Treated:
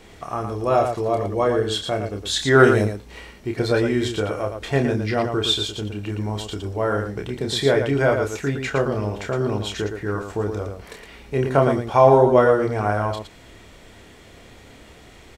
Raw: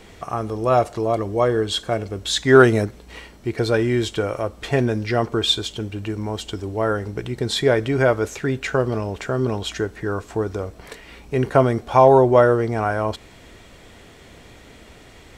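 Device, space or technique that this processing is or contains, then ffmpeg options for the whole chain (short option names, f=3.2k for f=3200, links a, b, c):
slapback doubling: -filter_complex "[0:a]asplit=3[a][b][c];[b]adelay=29,volume=-5dB[d];[c]adelay=114,volume=-6.5dB[e];[a][d][e]amix=inputs=3:normalize=0,volume=-2.5dB"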